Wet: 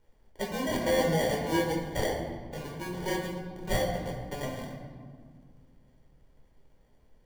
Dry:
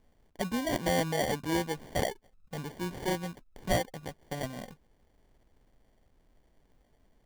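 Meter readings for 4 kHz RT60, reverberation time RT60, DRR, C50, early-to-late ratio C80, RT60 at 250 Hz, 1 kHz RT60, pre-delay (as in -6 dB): 1.0 s, 1.8 s, -1.5 dB, 4.0 dB, 6.0 dB, 3.0 s, 1.7 s, 10 ms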